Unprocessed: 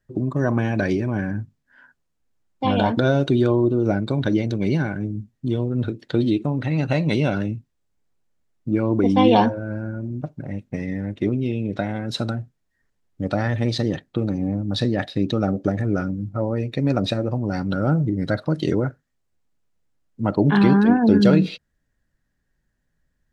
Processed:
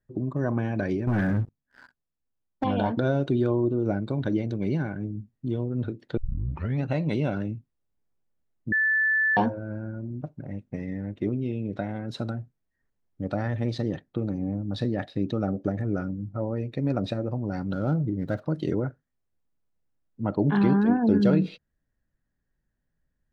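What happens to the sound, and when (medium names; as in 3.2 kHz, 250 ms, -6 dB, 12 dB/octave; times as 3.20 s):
1.07–2.64 s: waveshaping leveller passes 3
6.17 s: tape start 0.66 s
8.72–9.37 s: bleep 1.75 kHz -11 dBFS
17.73–18.42 s: median filter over 15 samples
whole clip: treble shelf 2.3 kHz -9 dB; trim -5.5 dB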